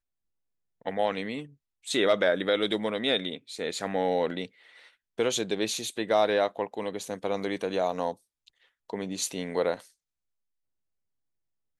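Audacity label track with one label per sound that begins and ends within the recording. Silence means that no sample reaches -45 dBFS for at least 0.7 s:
0.820000	9.860000	sound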